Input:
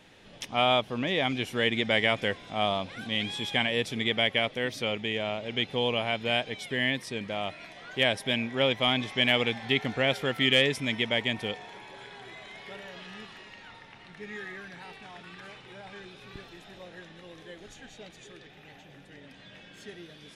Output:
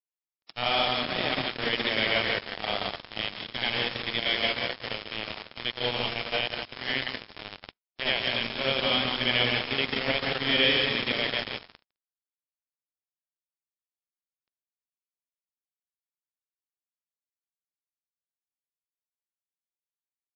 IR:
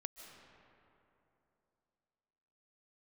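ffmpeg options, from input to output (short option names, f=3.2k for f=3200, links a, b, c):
-filter_complex "[0:a]aecho=1:1:141|174|181:0.473|0.316|0.422,asplit=2[a][b];[1:a]atrim=start_sample=2205,highshelf=f=2.8k:g=9,adelay=74[c];[b][c]afir=irnorm=-1:irlink=0,volume=6dB[d];[a][d]amix=inputs=2:normalize=0,acrusher=bits=2:mix=0:aa=0.5,volume=-7dB" -ar 12000 -c:a libmp3lame -b:a 32k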